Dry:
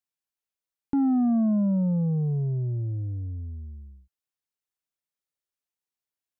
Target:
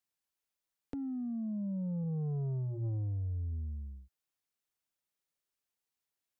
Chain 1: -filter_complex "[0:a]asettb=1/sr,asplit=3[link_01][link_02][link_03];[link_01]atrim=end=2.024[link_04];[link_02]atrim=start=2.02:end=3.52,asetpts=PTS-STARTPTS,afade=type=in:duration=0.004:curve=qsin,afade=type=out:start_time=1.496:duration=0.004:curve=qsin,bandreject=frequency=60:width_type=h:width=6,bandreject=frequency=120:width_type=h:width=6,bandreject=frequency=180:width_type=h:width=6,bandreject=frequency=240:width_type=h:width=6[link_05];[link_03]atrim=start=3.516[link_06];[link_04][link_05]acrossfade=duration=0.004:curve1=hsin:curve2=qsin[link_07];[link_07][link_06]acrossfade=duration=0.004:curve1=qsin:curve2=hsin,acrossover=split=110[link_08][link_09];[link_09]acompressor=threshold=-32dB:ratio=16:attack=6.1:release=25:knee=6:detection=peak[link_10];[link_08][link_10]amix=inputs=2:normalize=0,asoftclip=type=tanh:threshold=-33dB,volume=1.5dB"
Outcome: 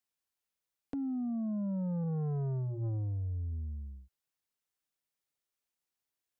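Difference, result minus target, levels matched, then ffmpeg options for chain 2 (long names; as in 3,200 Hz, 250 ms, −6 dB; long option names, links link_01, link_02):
downward compressor: peak gain reduction −6 dB
-filter_complex "[0:a]asettb=1/sr,asplit=3[link_01][link_02][link_03];[link_01]atrim=end=2.024[link_04];[link_02]atrim=start=2.02:end=3.52,asetpts=PTS-STARTPTS,afade=type=in:duration=0.004:curve=qsin,afade=type=out:start_time=1.496:duration=0.004:curve=qsin,bandreject=frequency=60:width_type=h:width=6,bandreject=frequency=120:width_type=h:width=6,bandreject=frequency=180:width_type=h:width=6,bandreject=frequency=240:width_type=h:width=6[link_05];[link_03]atrim=start=3.516[link_06];[link_04][link_05]acrossfade=duration=0.004:curve1=hsin:curve2=qsin[link_07];[link_07][link_06]acrossfade=duration=0.004:curve1=qsin:curve2=hsin,acrossover=split=110[link_08][link_09];[link_09]acompressor=threshold=-38.5dB:ratio=16:attack=6.1:release=25:knee=6:detection=peak[link_10];[link_08][link_10]amix=inputs=2:normalize=0,asoftclip=type=tanh:threshold=-33dB,volume=1.5dB"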